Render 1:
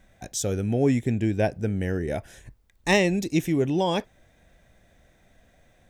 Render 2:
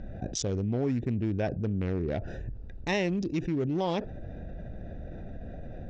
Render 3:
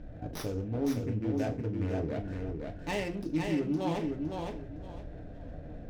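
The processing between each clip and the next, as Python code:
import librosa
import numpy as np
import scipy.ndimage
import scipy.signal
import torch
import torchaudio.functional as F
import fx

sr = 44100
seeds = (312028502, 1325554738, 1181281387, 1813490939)

y1 = fx.wiener(x, sr, points=41)
y1 = scipy.signal.sosfilt(scipy.signal.butter(6, 6000.0, 'lowpass', fs=sr, output='sos'), y1)
y1 = fx.env_flatten(y1, sr, amount_pct=70)
y1 = F.gain(torch.from_numpy(y1), -9.0).numpy()
y2 = fx.echo_feedback(y1, sr, ms=512, feedback_pct=24, wet_db=-4.0)
y2 = fx.rev_fdn(y2, sr, rt60_s=0.32, lf_ratio=0.9, hf_ratio=0.95, size_ms=20.0, drr_db=1.5)
y2 = fx.running_max(y2, sr, window=5)
y2 = F.gain(torch.from_numpy(y2), -6.0).numpy()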